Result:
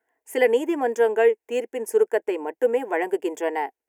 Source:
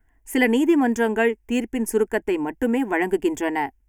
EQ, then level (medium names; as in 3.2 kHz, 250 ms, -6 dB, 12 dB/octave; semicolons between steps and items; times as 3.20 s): resonant high-pass 500 Hz, resonance Q 3.7; -5.0 dB